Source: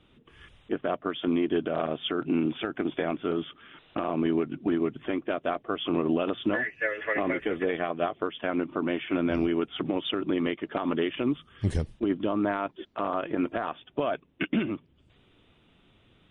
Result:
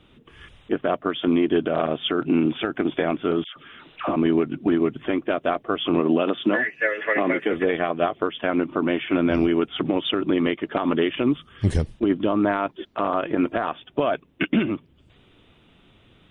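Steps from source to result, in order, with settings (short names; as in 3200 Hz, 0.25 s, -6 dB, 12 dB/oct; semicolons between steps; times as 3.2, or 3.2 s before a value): 3.44–4.16 dispersion lows, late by 0.125 s, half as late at 1000 Hz; 6–7.53 HPF 150 Hz 24 dB/oct; gain +6 dB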